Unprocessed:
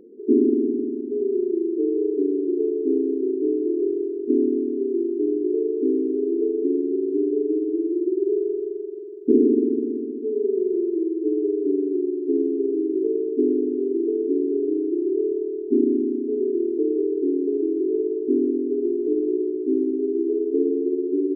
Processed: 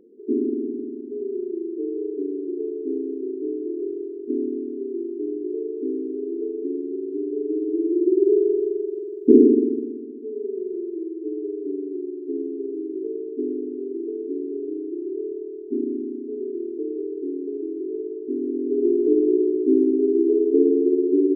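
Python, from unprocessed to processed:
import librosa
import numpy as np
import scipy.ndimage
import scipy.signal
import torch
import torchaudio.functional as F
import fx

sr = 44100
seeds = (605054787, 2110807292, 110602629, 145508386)

y = fx.gain(x, sr, db=fx.line((7.25, -5.5), (8.14, 4.5), (9.4, 4.5), (9.98, -6.5), (18.38, -6.5), (18.88, 4.0)))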